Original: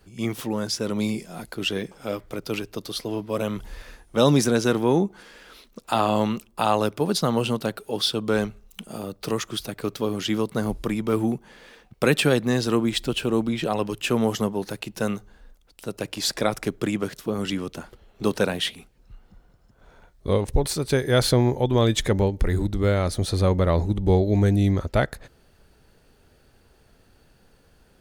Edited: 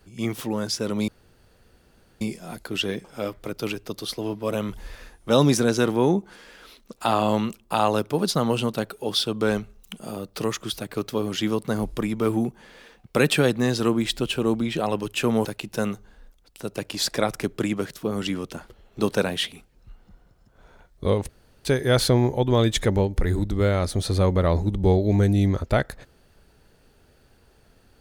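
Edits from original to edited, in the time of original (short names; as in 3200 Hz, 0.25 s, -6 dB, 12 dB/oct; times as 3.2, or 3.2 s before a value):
1.08 insert room tone 1.13 s
14.32–14.68 cut
20.52–20.88 room tone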